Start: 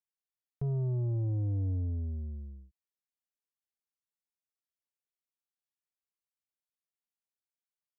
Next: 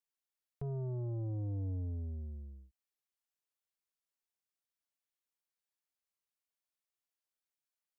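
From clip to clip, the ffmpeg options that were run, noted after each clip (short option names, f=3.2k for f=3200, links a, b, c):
-af "equalizer=f=140:w=0.58:g=-7.5"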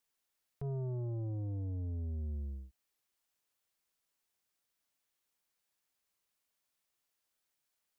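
-af "alimiter=level_in=18.5dB:limit=-24dB:level=0:latency=1:release=264,volume=-18.5dB,volume=8.5dB"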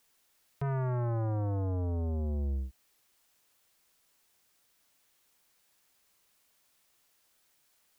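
-af "aeval=exprs='0.0211*sin(PI/2*1.78*val(0)/0.0211)':c=same,volume=4.5dB"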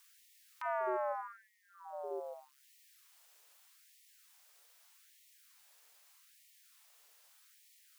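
-af "afftfilt=real='re*gte(b*sr/1024,380*pow(1800/380,0.5+0.5*sin(2*PI*0.81*pts/sr)))':imag='im*gte(b*sr/1024,380*pow(1800/380,0.5+0.5*sin(2*PI*0.81*pts/sr)))':win_size=1024:overlap=0.75,volume=5.5dB"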